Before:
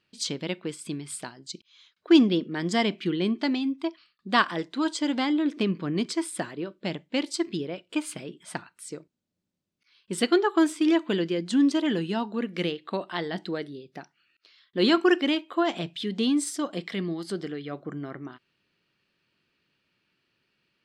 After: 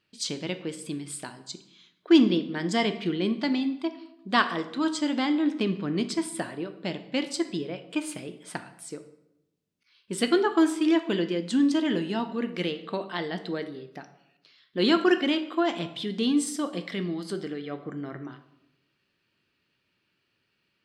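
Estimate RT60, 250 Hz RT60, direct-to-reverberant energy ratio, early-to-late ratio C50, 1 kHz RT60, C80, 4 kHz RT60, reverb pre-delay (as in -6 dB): 0.85 s, 1.0 s, 8.5 dB, 12.0 dB, 0.80 s, 15.0 dB, 0.60 s, 4 ms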